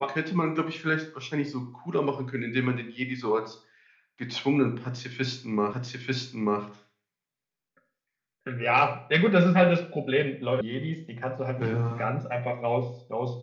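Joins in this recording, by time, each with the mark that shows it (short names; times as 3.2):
5.73 repeat of the last 0.89 s
10.61 sound cut off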